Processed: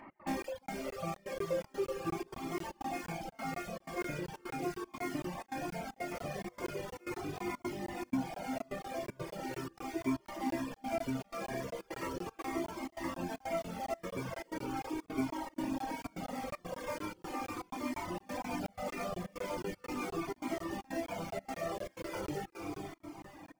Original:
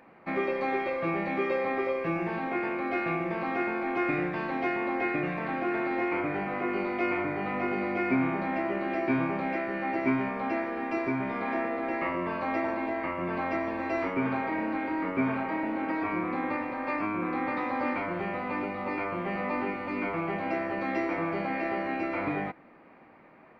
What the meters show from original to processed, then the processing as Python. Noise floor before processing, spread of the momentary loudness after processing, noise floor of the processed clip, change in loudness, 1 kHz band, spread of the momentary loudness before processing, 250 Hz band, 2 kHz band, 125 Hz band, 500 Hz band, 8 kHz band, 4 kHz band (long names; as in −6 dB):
−54 dBFS, 5 LU, −66 dBFS, −9.5 dB, −9.5 dB, 3 LU, −9.0 dB, −13.0 dB, −6.0 dB, −8.5 dB, can't be measured, 0.0 dB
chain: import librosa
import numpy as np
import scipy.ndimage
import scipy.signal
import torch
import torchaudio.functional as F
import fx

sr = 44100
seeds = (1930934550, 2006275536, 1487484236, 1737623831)

p1 = (np.mod(10.0 ** (31.5 / 20.0) * x + 1.0, 2.0) - 1.0) / 10.0 ** (31.5 / 20.0)
p2 = x + F.gain(torch.from_numpy(p1), -4.0).numpy()
p3 = fx.high_shelf(p2, sr, hz=4800.0, db=-7.0)
p4 = fx.rider(p3, sr, range_db=10, speed_s=0.5)
p5 = fx.notch(p4, sr, hz=3900.0, q=8.9)
p6 = fx.dereverb_blind(p5, sr, rt60_s=2.0)
p7 = fx.dynamic_eq(p6, sr, hz=1800.0, q=0.82, threshold_db=-50.0, ratio=4.0, max_db=-7)
p8 = p7 + fx.echo_diffused(p7, sr, ms=466, feedback_pct=44, wet_db=-3.0, dry=0)
p9 = fx.dereverb_blind(p8, sr, rt60_s=0.6)
p10 = fx.step_gate(p9, sr, bpm=155, pattern='x.xxxx.xxxx', floor_db=-24.0, edge_ms=4.5)
p11 = fx.buffer_crackle(p10, sr, first_s=0.42, period_s=0.24, block=1024, kind='zero')
p12 = fx.comb_cascade(p11, sr, direction='falling', hz=0.39)
y = F.gain(torch.from_numpy(p12), 1.5).numpy()